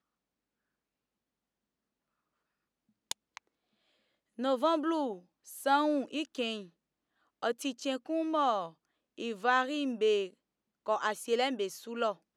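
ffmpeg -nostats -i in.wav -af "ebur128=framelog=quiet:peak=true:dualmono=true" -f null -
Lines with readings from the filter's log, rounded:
Integrated loudness:
  I:         -29.4 LUFS
  Threshold: -40.0 LUFS
Loudness range:
  LRA:        18.6 LU
  Threshold: -51.3 LUFS
  LRA low:   -47.9 LUFS
  LRA high:  -29.3 LUFS
True peak:
  Peak:      -12.7 dBFS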